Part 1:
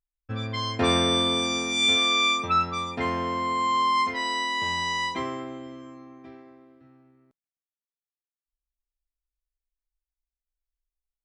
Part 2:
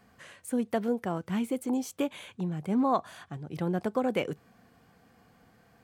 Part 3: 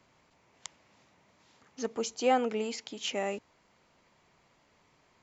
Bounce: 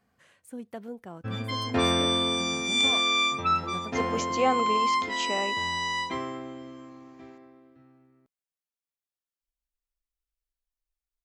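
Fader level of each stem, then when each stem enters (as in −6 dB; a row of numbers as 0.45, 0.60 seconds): −2.0, −10.5, +1.0 decibels; 0.95, 0.00, 2.15 seconds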